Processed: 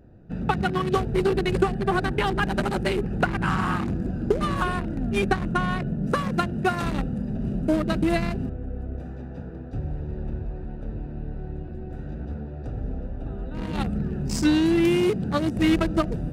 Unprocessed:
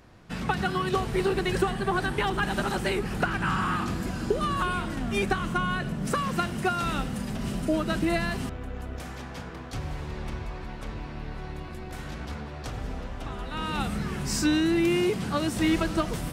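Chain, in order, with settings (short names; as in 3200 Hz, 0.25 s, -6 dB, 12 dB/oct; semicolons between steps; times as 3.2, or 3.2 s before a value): Wiener smoothing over 41 samples; gain +4.5 dB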